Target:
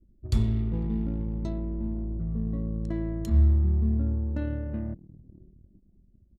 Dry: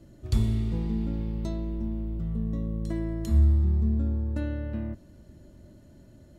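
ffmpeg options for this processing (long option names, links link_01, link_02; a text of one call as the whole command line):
ffmpeg -i in.wav -filter_complex "[0:a]asplit=2[link_01][link_02];[link_02]asplit=3[link_03][link_04][link_05];[link_03]adelay=499,afreqshift=39,volume=-21dB[link_06];[link_04]adelay=998,afreqshift=78,volume=-27.7dB[link_07];[link_05]adelay=1497,afreqshift=117,volume=-34.5dB[link_08];[link_06][link_07][link_08]amix=inputs=3:normalize=0[link_09];[link_01][link_09]amix=inputs=2:normalize=0,anlmdn=0.398" out.wav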